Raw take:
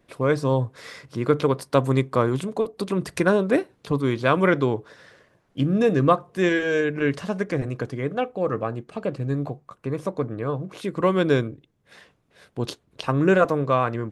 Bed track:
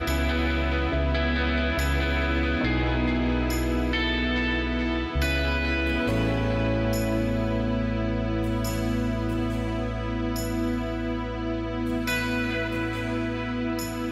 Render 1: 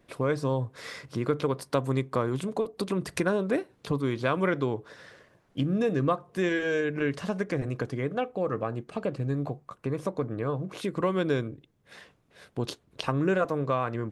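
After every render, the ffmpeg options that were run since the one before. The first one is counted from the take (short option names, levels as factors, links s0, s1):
-af "acompressor=threshold=0.0398:ratio=2"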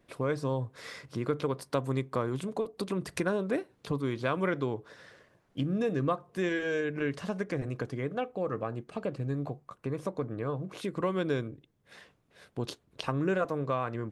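-af "volume=0.668"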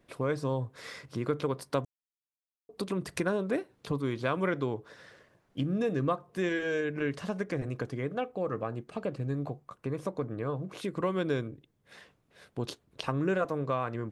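-filter_complex "[0:a]asplit=3[s0][s1][s2];[s0]atrim=end=1.85,asetpts=PTS-STARTPTS,afade=t=out:st=1.846:d=0.004:c=hsin[s3];[s1]atrim=start=1.85:end=2.69,asetpts=PTS-STARTPTS,volume=0[s4];[s2]atrim=start=2.69,asetpts=PTS-STARTPTS,afade=t=in:d=0.004:c=hsin[s5];[s3][s4][s5]concat=n=3:v=0:a=1"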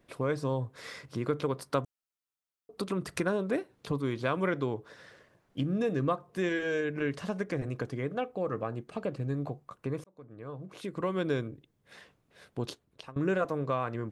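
-filter_complex "[0:a]asettb=1/sr,asplit=3[s0][s1][s2];[s0]atrim=end=1.604[s3];[s1]atrim=start=1.6:end=3.25,asetpts=PTS-STARTPTS,afade=t=in:d=0.004:c=qsin,afade=t=out:st=1.646:d=0.004:c=qsin,equalizer=f=1300:w=6.2:g=7[s4];[s2]atrim=start=3.246[s5];[s3][s4]acrossfade=d=0.004:c1=hsin:c2=qsin[s6];[s6][s5]acrossfade=d=0.004:c1=qsin:c2=hsin,asplit=3[s7][s8][s9];[s7]atrim=end=10.04,asetpts=PTS-STARTPTS,afade=t=out:st=10.036:d=0.004:c=hsin[s10];[s8]atrim=start=10.04:end=13.16,asetpts=PTS-STARTPTS,afade=t=in:d=1.22,afade=t=out:st=2.59:d=0.53:silence=0.0749894[s11];[s9]atrim=start=13.16,asetpts=PTS-STARTPTS,afade=t=in:d=0.004:c=hsin:silence=0.0749894[s12];[s10][s11][s12]concat=n=3:v=0:a=1"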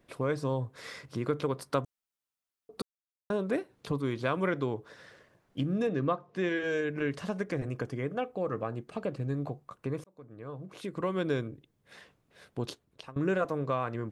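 -filter_complex "[0:a]asettb=1/sr,asplit=3[s0][s1][s2];[s0]atrim=end=5.874[s3];[s1]atrim=start=5.87:end=6.64,asetpts=PTS-STARTPTS,afade=t=in:d=0.004:c=qsin,afade=t=out:st=0.766:d=0.004:c=qsin,highpass=110,lowpass=4900[s4];[s2]atrim=start=6.636[s5];[s3][s4]acrossfade=d=0.004:c1=hsin:c2=qsin[s6];[s6][s5]acrossfade=d=0.004:c1=qsin:c2=hsin,asettb=1/sr,asplit=3[s7][s8][s9];[s7]atrim=end=7.674[s10];[s8]atrim=start=7.67:end=8.23,asetpts=PTS-STARTPTS,afade=t=in:d=0.004:c=qsin,afade=t=out:st=0.556:d=0.004:c=qsin,bandreject=f=3900:w=6.7[s11];[s9]atrim=start=8.226[s12];[s10][s11]acrossfade=d=0.004:c1=hsin:c2=qsin[s13];[s13][s12]acrossfade=d=0.004:c1=qsin:c2=hsin,asplit=3[s14][s15][s16];[s14]atrim=end=2.82,asetpts=PTS-STARTPTS,afade=t=out:st=2.816:d=0.004:c=hsin[s17];[s15]atrim=start=2.82:end=3.3,asetpts=PTS-STARTPTS,volume=0[s18];[s16]atrim=start=3.3,asetpts=PTS-STARTPTS,afade=t=in:d=0.004:c=hsin[s19];[s17][s18][s19]concat=n=3:v=0:a=1"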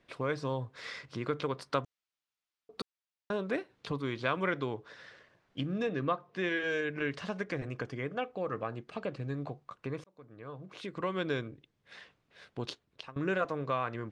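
-af "lowpass=4600,tiltshelf=f=1100:g=-4.5"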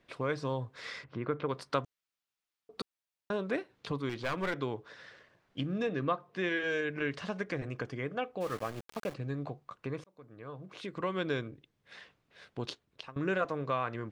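-filter_complex "[0:a]asettb=1/sr,asplit=3[s0][s1][s2];[s0]atrim=end=1.044[s3];[s1]atrim=start=1.04:end=1.49,asetpts=PTS-STARTPTS,afade=t=in:d=0.004:c=qsin,afade=t=out:st=0.446:d=0.004:c=qsin,lowpass=2000[s4];[s2]atrim=start=1.486[s5];[s3][s4]acrossfade=d=0.004:c1=hsin:c2=qsin[s6];[s6][s5]acrossfade=d=0.004:c1=qsin:c2=hsin,asettb=1/sr,asplit=3[s7][s8][s9];[s7]atrim=end=4.094[s10];[s8]atrim=start=4.09:end=4.57,asetpts=PTS-STARTPTS,afade=t=in:d=0.004:c=qsin,afade=t=out:st=0.476:d=0.004:c=qsin,aeval=exprs='clip(val(0),-1,0.0237)':c=same[s11];[s9]atrim=start=4.566[s12];[s10][s11]acrossfade=d=0.004:c1=hsin:c2=qsin[s13];[s13][s12]acrossfade=d=0.004:c1=qsin:c2=hsin,asplit=3[s14][s15][s16];[s14]afade=t=out:st=8.4:d=0.02[s17];[s15]aeval=exprs='val(0)*gte(abs(val(0)),0.00841)':c=same,afade=t=in:st=8.4:d=0.02,afade=t=out:st=9.13:d=0.02[s18];[s16]afade=t=in:st=9.13:d=0.02[s19];[s17][s18][s19]amix=inputs=3:normalize=0"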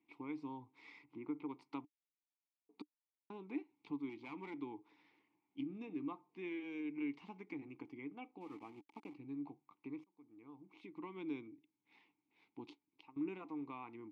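-filter_complex "[0:a]crystalizer=i=1:c=0,asplit=3[s0][s1][s2];[s0]bandpass=f=300:t=q:w=8,volume=1[s3];[s1]bandpass=f=870:t=q:w=8,volume=0.501[s4];[s2]bandpass=f=2240:t=q:w=8,volume=0.355[s5];[s3][s4][s5]amix=inputs=3:normalize=0"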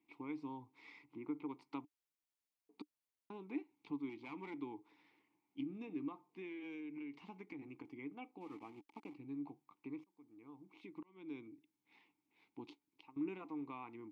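-filter_complex "[0:a]asettb=1/sr,asplit=3[s0][s1][s2];[s0]atrim=end=6.084[s3];[s1]atrim=start=6.08:end=7.98,asetpts=PTS-STARTPTS,afade=t=in:d=0.004:c=qsin,afade=t=out:st=1.896:d=0.004:c=qsin,acompressor=threshold=0.00631:ratio=6:attack=3.2:release=140:knee=1:detection=peak[s4];[s2]atrim=start=7.976[s5];[s3][s4]acrossfade=d=0.004:c1=hsin:c2=qsin[s6];[s6][s5]acrossfade=d=0.004:c1=qsin:c2=hsin,asplit=2[s7][s8];[s7]atrim=end=11.03,asetpts=PTS-STARTPTS,afade=t=out:st=11.026:d=0.004:c=hsin[s9];[s8]atrim=start=11.03,asetpts=PTS-STARTPTS,afade=t=in:d=0.5[s10];[s9][s10]concat=n=2:v=0:a=1"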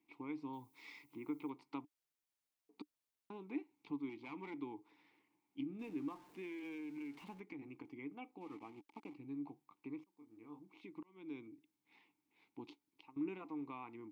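-filter_complex "[0:a]asettb=1/sr,asplit=3[s0][s1][s2];[s0]atrim=end=0.534[s3];[s1]atrim=start=0.53:end=1.5,asetpts=PTS-STARTPTS,afade=t=in:d=0.004:c=qsin,afade=t=out:st=0.966:d=0.004:c=qsin,aemphasis=mode=production:type=75kf[s4];[s2]atrim=start=1.496[s5];[s3][s4]acrossfade=d=0.004:c1=hsin:c2=qsin[s6];[s6][s5]acrossfade=d=0.004:c1=qsin:c2=hsin,asettb=1/sr,asplit=3[s7][s8][s9];[s7]atrim=end=5.794[s10];[s8]atrim=start=5.79:end=7.4,asetpts=PTS-STARTPTS,afade=t=in:d=0.004:c=qsin,afade=t=out:st=1.606:d=0.004:c=qsin,aeval=exprs='val(0)+0.5*0.00106*sgn(val(0))':c=same[s11];[s9]atrim=start=7.396[s12];[s10][s11]acrossfade=d=0.004:c1=hsin:c2=qsin[s13];[s13][s12]acrossfade=d=0.004:c1=qsin:c2=hsin,asettb=1/sr,asplit=3[s14][s15][s16];[s14]atrim=end=10.144[s17];[s15]atrim=start=10.14:end=10.6,asetpts=PTS-STARTPTS,afade=t=in:d=0.004:c=qsin,afade=t=out:st=0.456:d=0.004:c=qsin,asplit=2[s18][s19];[s19]adelay=27,volume=0.631[s20];[s18][s20]amix=inputs=2:normalize=0,atrim=end_sample=20286[s21];[s16]atrim=start=10.596[s22];[s17][s21]acrossfade=d=0.004:c1=hsin:c2=qsin[s23];[s23][s22]acrossfade=d=0.004:c1=qsin:c2=hsin"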